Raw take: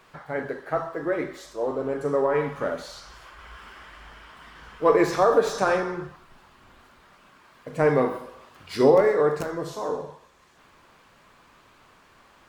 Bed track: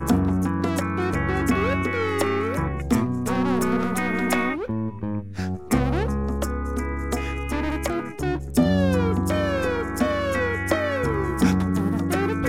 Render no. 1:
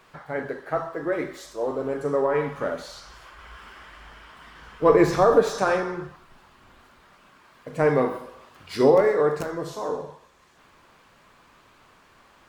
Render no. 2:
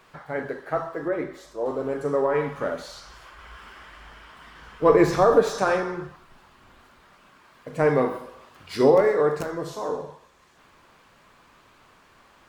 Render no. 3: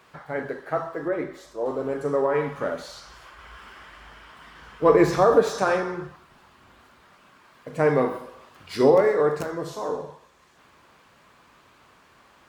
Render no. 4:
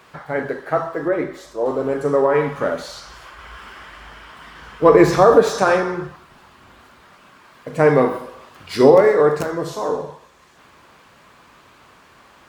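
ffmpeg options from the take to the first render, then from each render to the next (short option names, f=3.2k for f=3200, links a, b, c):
-filter_complex "[0:a]asettb=1/sr,asplit=3[a][b][c];[a]atrim=end=1.124[d];[b]atrim=start=1.12:end=2.01,asetpts=PTS-STARTPTS,afade=t=in:d=0.004:c=qsin,afade=t=out:st=0.886:d=0.004:c=qsin,highshelf=f=5k:g=4[e];[c]atrim=start=2.006[f];[d][e]acrossfade=d=0.004:c1=hsin:c2=qsin[g];[g][f]acrossfade=d=0.004:c1=qsin:c2=hsin,asettb=1/sr,asplit=3[h][i][j];[h]atrim=end=4.824[k];[i]atrim=start=4.82:end=5.43,asetpts=PTS-STARTPTS,afade=t=in:d=0.004:c=qsin,afade=t=out:st=0.606:d=0.004:c=qsin,lowshelf=f=220:g=11[l];[j]atrim=start=5.426[m];[k][l]acrossfade=d=0.004:c1=hsin:c2=qsin[n];[n][m]acrossfade=d=0.004:c1=qsin:c2=hsin"
-filter_complex "[0:a]asettb=1/sr,asplit=3[a][b][c];[a]atrim=end=1.084[d];[b]atrim=start=1.08:end=1.66,asetpts=PTS-STARTPTS,afade=t=in:d=0.004:c=qsin,afade=t=out:st=0.576:d=0.004:c=qsin,highshelf=f=2.1k:g=-8.5[e];[c]atrim=start=1.656[f];[d][e]acrossfade=d=0.004:c1=hsin:c2=qsin[g];[g][f]acrossfade=d=0.004:c1=qsin:c2=hsin"
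-af "highpass=48"
-af "volume=6.5dB,alimiter=limit=-1dB:level=0:latency=1"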